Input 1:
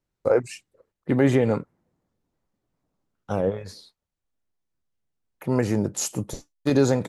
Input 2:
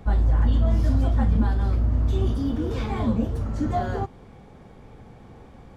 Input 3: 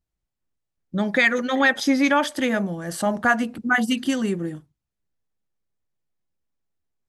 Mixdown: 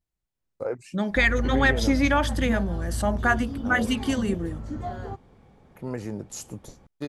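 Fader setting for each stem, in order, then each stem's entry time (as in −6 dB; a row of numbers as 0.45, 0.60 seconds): −10.0, −8.0, −3.0 decibels; 0.35, 1.10, 0.00 seconds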